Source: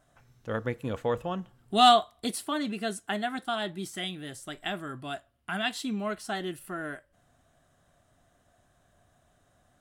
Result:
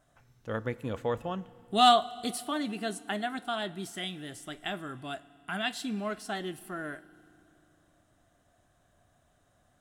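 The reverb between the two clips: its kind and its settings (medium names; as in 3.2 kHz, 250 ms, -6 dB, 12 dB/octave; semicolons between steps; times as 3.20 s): FDN reverb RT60 2.7 s, low-frequency decay 1.3×, high-frequency decay 1×, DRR 18.5 dB; trim -2 dB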